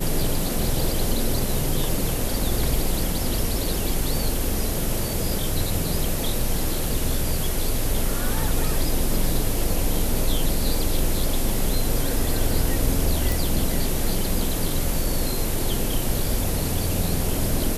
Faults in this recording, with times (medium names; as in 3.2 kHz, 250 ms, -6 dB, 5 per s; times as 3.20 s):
13.32 s: pop